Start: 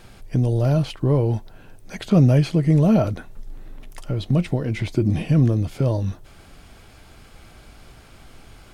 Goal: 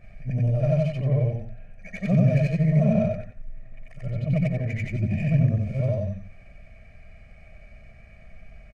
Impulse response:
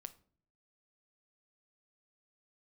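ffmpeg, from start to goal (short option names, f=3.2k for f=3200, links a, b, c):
-filter_complex "[0:a]afftfilt=real='re':imag='-im':win_size=8192:overlap=0.75,firequalizer=gain_entry='entry(270,0);entry(400,-12);entry(660,1);entry(950,-17);entry(2200,7);entry(3300,-15);entry(6200,-6)':delay=0.05:min_phase=1,acrossover=split=210[a][b];[b]acompressor=threshold=-24dB:ratio=5[c];[a][c]amix=inputs=2:normalize=0,highshelf=f=5.4k:g=5,aecho=1:1:1.7:0.72,asplit=2[d][e];[e]aecho=0:1:88:0.355[f];[d][f]amix=inputs=2:normalize=0,adynamicsmooth=sensitivity=6:basefreq=3.4k"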